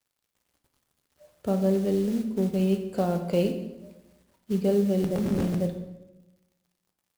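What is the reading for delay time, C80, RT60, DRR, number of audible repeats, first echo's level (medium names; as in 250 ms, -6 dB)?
no echo, 10.5 dB, 1.0 s, 5.0 dB, no echo, no echo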